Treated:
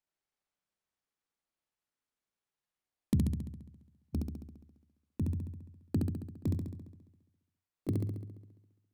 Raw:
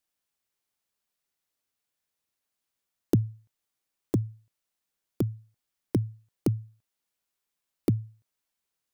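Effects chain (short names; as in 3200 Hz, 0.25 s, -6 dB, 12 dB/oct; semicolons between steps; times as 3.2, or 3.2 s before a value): gliding pitch shift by -11.5 st ending unshifted; notches 60/120/180/240/300/360/420 Hz; on a send: flutter echo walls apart 11.7 m, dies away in 1.1 s; on the sum: mismatched tape noise reduction decoder only; gain -5 dB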